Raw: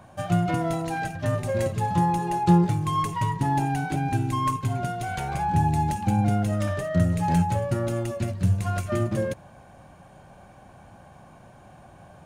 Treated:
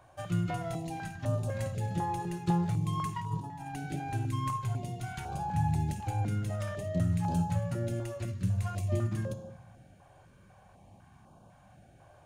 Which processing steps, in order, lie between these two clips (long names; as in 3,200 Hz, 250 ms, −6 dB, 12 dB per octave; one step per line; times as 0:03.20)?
0:03.16–0:03.75: compressor whose output falls as the input rises −28 dBFS, ratio −0.5
on a send at −11.5 dB: convolution reverb RT60 1.1 s, pre-delay 13 ms
on the sum: notch on a step sequencer 4 Hz 200–2,000 Hz
level −8 dB